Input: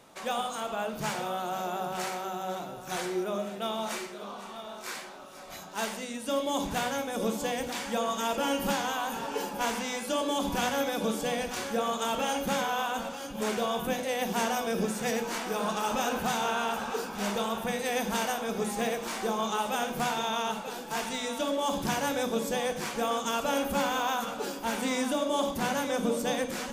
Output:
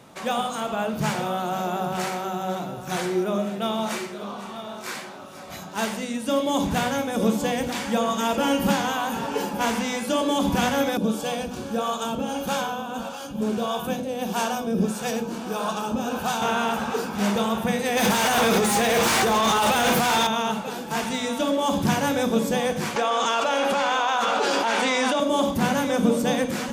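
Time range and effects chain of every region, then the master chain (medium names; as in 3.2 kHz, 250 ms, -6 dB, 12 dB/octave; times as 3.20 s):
10.97–16.42 s: peaking EQ 2 kHz -14.5 dB 0.21 oct + harmonic tremolo 1.6 Hz, crossover 490 Hz
17.97–20.27 s: treble shelf 7.1 kHz +8 dB + compressor with a negative ratio -34 dBFS + overdrive pedal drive 25 dB, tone 6.2 kHz, clips at -18.5 dBFS
22.96–25.20 s: band-pass 530–5900 Hz + level flattener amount 100%
whole clip: high-pass 70 Hz; tone controls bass +8 dB, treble -2 dB; trim +5.5 dB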